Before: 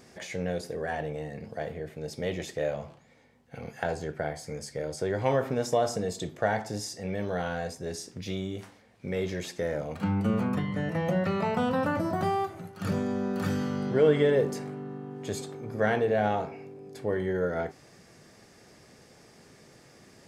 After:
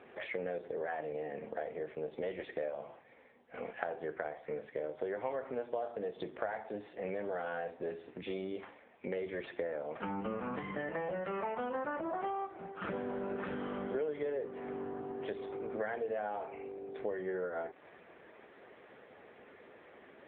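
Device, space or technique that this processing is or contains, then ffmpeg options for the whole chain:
voicemail: -af "highpass=370,lowpass=2.7k,acompressor=threshold=-39dB:ratio=6,volume=5dB" -ar 8000 -c:a libopencore_amrnb -b:a 6700

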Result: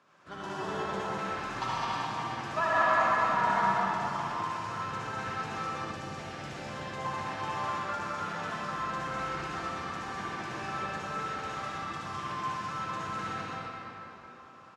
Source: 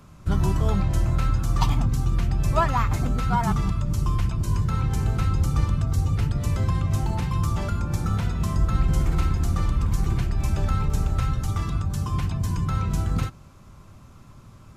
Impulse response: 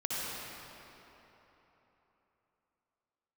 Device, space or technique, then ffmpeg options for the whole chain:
station announcement: -filter_complex "[0:a]highpass=460,lowpass=4.8k,equalizer=f=1.7k:t=o:w=0.22:g=8,aecho=1:1:72.89|204.1:0.316|0.794[a];[1:a]atrim=start_sample=2205[b];[a][b]afir=irnorm=-1:irlink=0,asettb=1/sr,asplit=3[c][d][e];[c]atrim=end=5.914[f];[d]atrim=start=5.91:end=7.05,asetpts=PTS-STARTPTS,afade=t=in:d=0.004:c=qsin,afade=t=out:st=1.136:d=0.004:c=qsin,equalizer=f=1.2k:t=o:w=0.88:g=-6[g];[e]atrim=start=7.046[h];[f][g]acrossfade=d=0.004:c1=hsin:c2=qsin[i];[i][h]acrossfade=d=0.004:c1=qsin:c2=hsin,volume=-7.5dB"

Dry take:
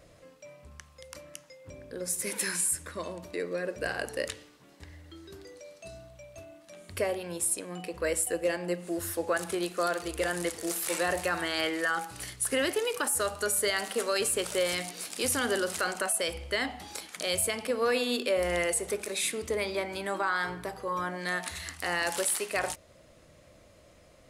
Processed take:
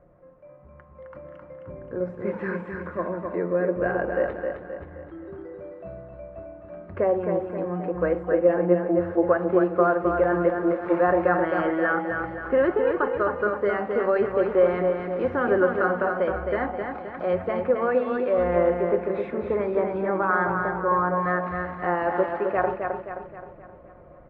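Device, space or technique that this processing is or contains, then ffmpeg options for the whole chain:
action camera in a waterproof case: -filter_complex "[0:a]asettb=1/sr,asplit=3[a][b][c];[a]atrim=end=17.744[d];[b]atrim=start=17.74:end=18.56,asetpts=PTS-STARTPTS,afade=t=in:d=0.004:c=qsin,afade=t=out:st=0.816:d=0.004:c=qsin,equalizer=f=390:w=0.55:g=-5[e];[c]atrim=start=18.556[f];[d][e]acrossfade=d=0.004:c1=hsin:c2=qsin[g];[g][f]acrossfade=d=0.004:c1=qsin:c2=hsin,lowpass=f=1.4k:w=0.5412,lowpass=f=1.4k:w=1.3066,aecho=1:1:5.6:0.38,aecho=1:1:263|526|789|1052|1315|1578:0.562|0.264|0.124|0.0584|0.0274|0.0129,dynaudnorm=f=120:g=17:m=7.5dB" -ar 22050 -c:a aac -b:a 48k

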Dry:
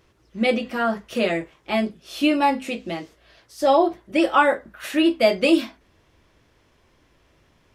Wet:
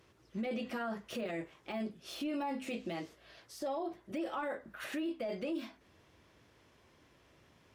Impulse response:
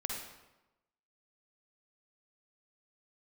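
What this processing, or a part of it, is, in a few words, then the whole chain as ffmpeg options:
podcast mastering chain: -af "highpass=78,deesser=1,acompressor=threshold=-30dB:ratio=2.5,alimiter=level_in=2.5dB:limit=-24dB:level=0:latency=1:release=11,volume=-2.5dB,volume=-3.5dB" -ar 48000 -c:a libmp3lame -b:a 112k

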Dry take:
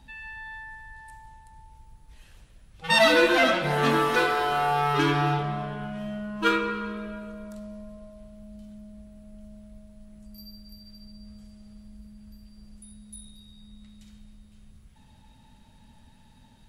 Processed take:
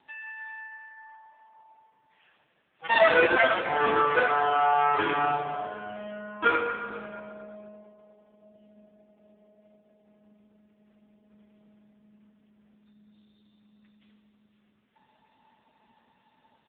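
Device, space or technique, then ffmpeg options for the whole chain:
satellite phone: -af "highpass=400,lowpass=3.2k,aecho=1:1:481:0.0841,volume=3dB" -ar 8000 -c:a libopencore_amrnb -b:a 5900

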